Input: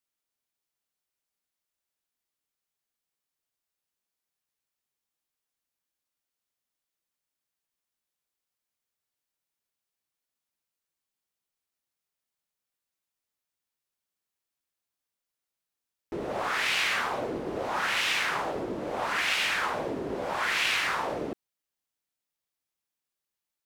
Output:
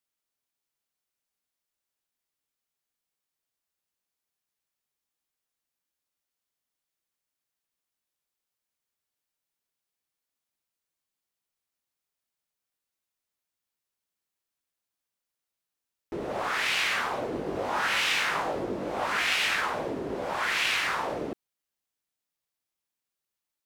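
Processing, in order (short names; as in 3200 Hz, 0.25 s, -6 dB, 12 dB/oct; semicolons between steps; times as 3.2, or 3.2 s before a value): 17.3–19.61 doubler 20 ms -5.5 dB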